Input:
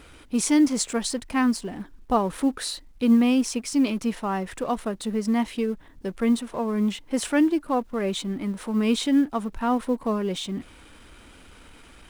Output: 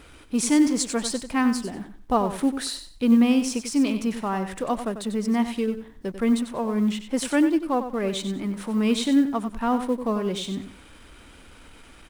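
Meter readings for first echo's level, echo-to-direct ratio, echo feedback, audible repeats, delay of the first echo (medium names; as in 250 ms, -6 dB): -10.0 dB, -10.0 dB, 24%, 3, 94 ms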